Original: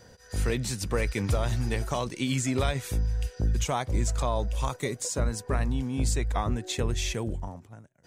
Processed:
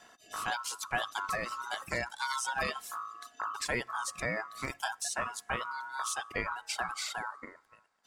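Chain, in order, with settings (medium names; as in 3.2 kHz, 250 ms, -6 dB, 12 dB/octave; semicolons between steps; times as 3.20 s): high-pass 180 Hz 6 dB/octave; ring modulator 1.2 kHz; two-slope reverb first 0.47 s, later 4.9 s, from -22 dB, DRR 13.5 dB; reverb removal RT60 1.7 s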